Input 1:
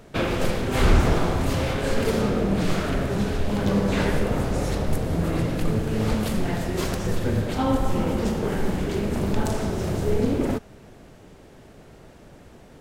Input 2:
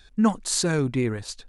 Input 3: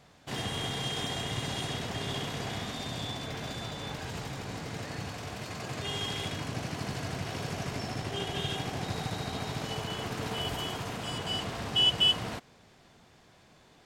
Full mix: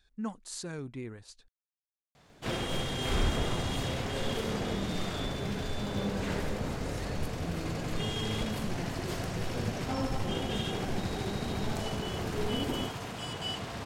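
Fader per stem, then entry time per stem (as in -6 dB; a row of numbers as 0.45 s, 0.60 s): -11.5 dB, -16.0 dB, -2.5 dB; 2.30 s, 0.00 s, 2.15 s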